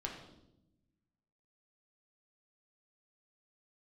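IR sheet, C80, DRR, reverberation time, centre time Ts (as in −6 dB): 8.0 dB, −1.0 dB, 0.85 s, 34 ms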